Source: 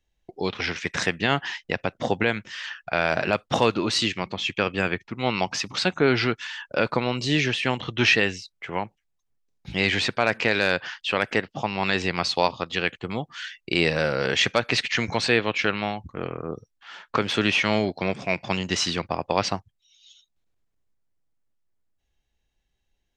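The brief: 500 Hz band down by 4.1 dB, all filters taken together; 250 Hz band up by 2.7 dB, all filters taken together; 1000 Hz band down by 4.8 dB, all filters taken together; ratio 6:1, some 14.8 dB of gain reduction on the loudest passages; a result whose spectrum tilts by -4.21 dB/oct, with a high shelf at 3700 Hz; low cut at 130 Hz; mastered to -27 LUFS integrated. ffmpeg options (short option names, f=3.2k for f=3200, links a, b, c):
-af "highpass=130,equalizer=f=250:t=o:g=6,equalizer=f=500:t=o:g=-6,equalizer=f=1k:t=o:g=-4.5,highshelf=f=3.7k:g=-3.5,acompressor=threshold=-33dB:ratio=6,volume=10dB"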